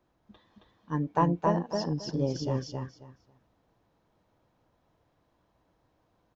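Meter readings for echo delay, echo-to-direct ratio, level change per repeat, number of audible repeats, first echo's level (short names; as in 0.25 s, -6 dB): 0.27 s, -3.0 dB, -14.5 dB, 3, -3.0 dB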